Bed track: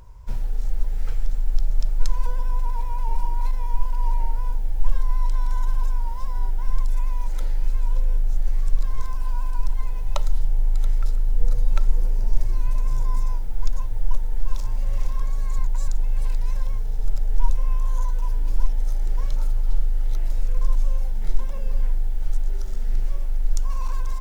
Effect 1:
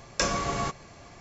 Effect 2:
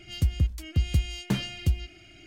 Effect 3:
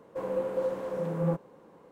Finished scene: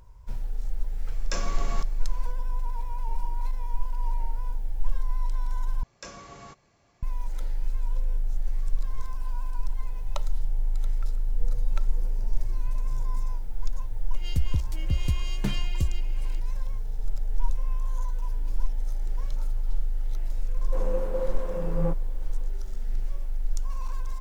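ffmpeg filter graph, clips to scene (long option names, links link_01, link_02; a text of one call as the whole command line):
ffmpeg -i bed.wav -i cue0.wav -i cue1.wav -i cue2.wav -filter_complex "[1:a]asplit=2[link_01][link_02];[0:a]volume=-6dB,asplit=2[link_03][link_04];[link_03]atrim=end=5.834[link_05];[link_02]atrim=end=1.2,asetpts=PTS-STARTPTS,volume=-16dB[link_06];[link_04]atrim=start=7.026[link_07];[link_01]atrim=end=1.2,asetpts=PTS-STARTPTS,volume=-7.5dB,afade=type=in:duration=0.004:curve=hsin,afade=type=out:start_time=1.196:duration=0.004:curve=hsin,adelay=1120[link_08];[2:a]atrim=end=2.26,asetpts=PTS-STARTPTS,volume=-3dB,afade=type=in:duration=0.004:curve=hsin,afade=type=out:start_time=2.256:duration=0.004:curve=hsin,adelay=14140[link_09];[3:a]atrim=end=1.91,asetpts=PTS-STARTPTS,volume=-1dB,afade=type=in:duration=0.004:curve=hsin,afade=type=out:start_time=1.906:duration=0.004:curve=hsin,adelay=20570[link_10];[link_05][link_06]acrossfade=duration=0.004:curve1=hsin:curve2=hsin[link_11];[link_11][link_07]acrossfade=duration=0.004:curve1=hsin:curve2=hsin[link_12];[link_12][link_08][link_09][link_10]amix=inputs=4:normalize=0" out.wav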